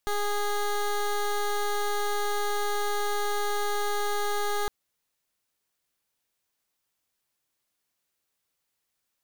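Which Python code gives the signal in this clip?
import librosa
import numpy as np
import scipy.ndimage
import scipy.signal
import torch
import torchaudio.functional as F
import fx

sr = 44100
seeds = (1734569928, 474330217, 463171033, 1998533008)

y = fx.pulse(sr, length_s=4.61, hz=412.0, level_db=-27.0, duty_pct=16)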